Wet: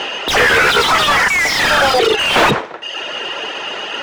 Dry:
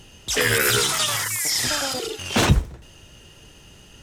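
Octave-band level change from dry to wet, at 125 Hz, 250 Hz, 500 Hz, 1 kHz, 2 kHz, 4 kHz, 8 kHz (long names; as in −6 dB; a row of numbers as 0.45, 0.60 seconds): −3.5, +4.5, +11.5, +15.0, +12.5, +8.5, −2.0 decibels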